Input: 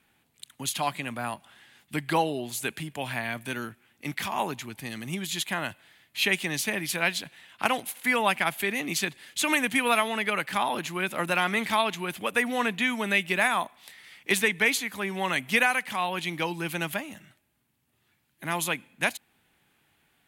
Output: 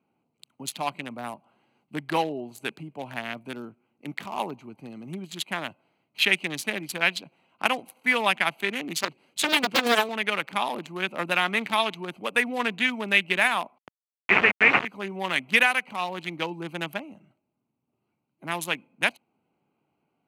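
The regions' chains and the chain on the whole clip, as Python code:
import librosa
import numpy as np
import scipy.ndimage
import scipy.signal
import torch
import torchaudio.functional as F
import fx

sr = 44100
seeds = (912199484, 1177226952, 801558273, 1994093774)

y = fx.chain(x, sr, fx.high_shelf(hz=7400.0, db=4.0),
    fx.doppler_dist(depth_ms=0.99), at=(8.97, 10.09))
y = fx.chain(y, sr, fx.delta_hold(step_db=-24.5),
    fx.high_shelf(hz=4000.0, db=9.5),
    fx.resample_bad(factor=8, down='none', up='filtered'), at=(13.78, 14.85))
y = fx.wiener(y, sr, points=25)
y = scipy.signal.sosfilt(scipy.signal.butter(2, 170.0, 'highpass', fs=sr, output='sos'), y)
y = fx.dynamic_eq(y, sr, hz=2800.0, q=0.96, threshold_db=-40.0, ratio=4.0, max_db=6)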